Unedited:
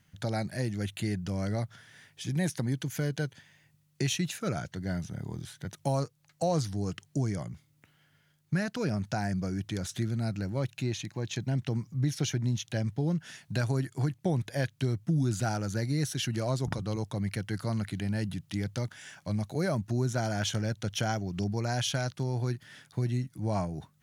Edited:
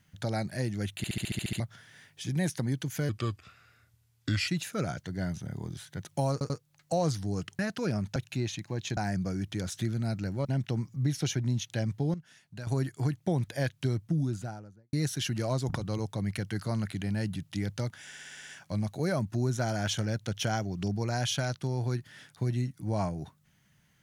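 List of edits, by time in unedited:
0.97 s: stutter in place 0.07 s, 9 plays
3.09–4.16 s: speed 77%
6.00 s: stutter 0.09 s, 3 plays
7.09–8.57 s: delete
10.62–11.43 s: move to 9.14 s
13.12–13.65 s: gain -11.5 dB
14.89–15.91 s: studio fade out
19.03 s: stutter 0.06 s, 8 plays

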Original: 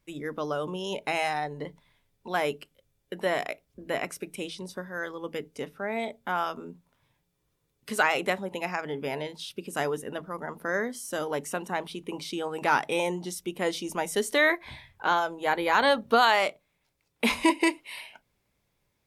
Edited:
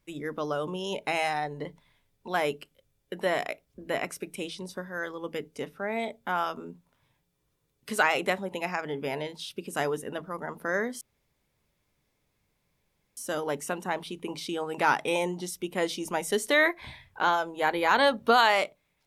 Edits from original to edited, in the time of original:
11.01 s: insert room tone 2.16 s

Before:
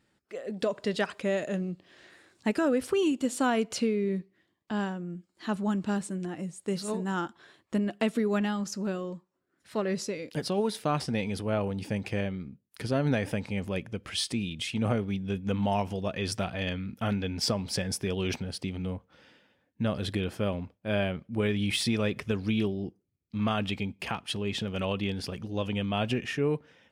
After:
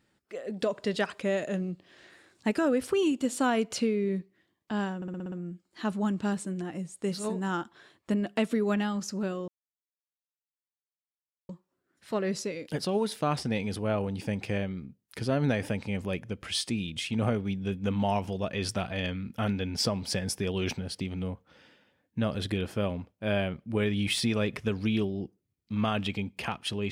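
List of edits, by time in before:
4.96 s: stutter 0.06 s, 7 plays
9.12 s: insert silence 2.01 s

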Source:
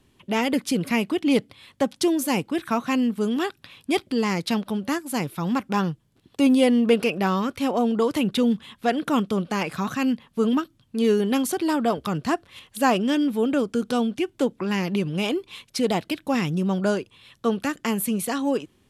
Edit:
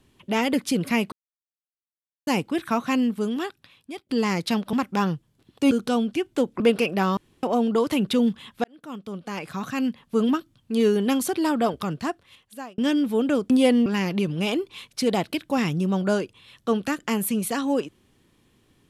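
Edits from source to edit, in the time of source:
1.12–2.27 s: mute
3.02–4.09 s: fade out, to -23 dB
4.73–5.50 s: delete
6.48–6.84 s: swap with 13.74–14.63 s
7.41–7.67 s: room tone
8.88–10.41 s: fade in
11.90–13.02 s: fade out

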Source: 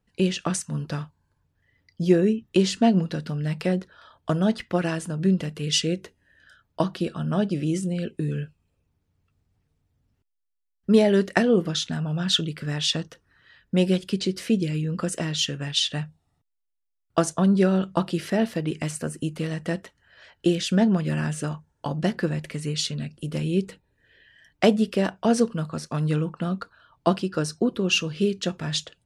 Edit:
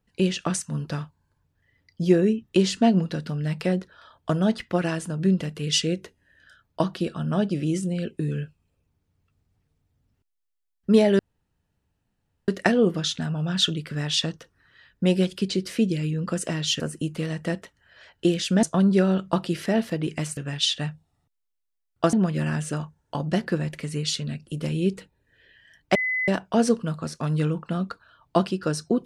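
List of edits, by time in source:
11.19 s: insert room tone 1.29 s
15.51–17.27 s: swap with 19.01–20.84 s
24.66–24.99 s: bleep 2.02 kHz -22.5 dBFS

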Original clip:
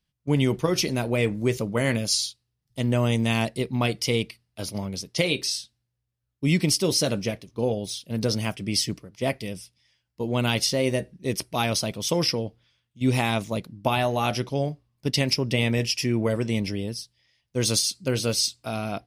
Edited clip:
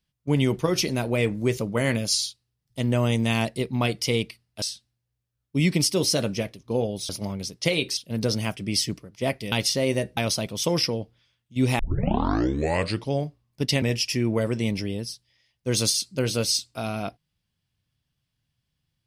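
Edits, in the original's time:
4.62–5.50 s: move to 7.97 s
9.52–10.49 s: delete
11.14–11.62 s: delete
13.24 s: tape start 1.31 s
15.27–15.71 s: delete

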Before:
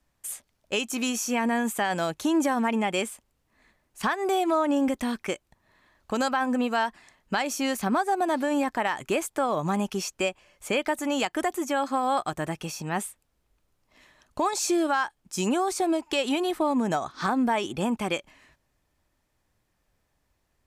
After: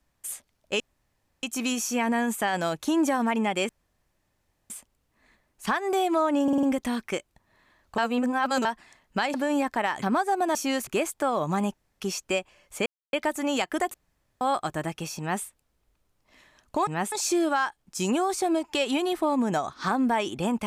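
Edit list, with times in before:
0.80 s: insert room tone 0.63 s
3.06 s: insert room tone 1.01 s
4.79 s: stutter 0.05 s, 5 plays
6.14–6.81 s: reverse
7.50–7.82 s: swap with 8.35–9.03 s
9.90 s: insert room tone 0.26 s
10.76 s: insert silence 0.27 s
11.57–12.04 s: room tone
12.82–13.07 s: copy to 14.50 s

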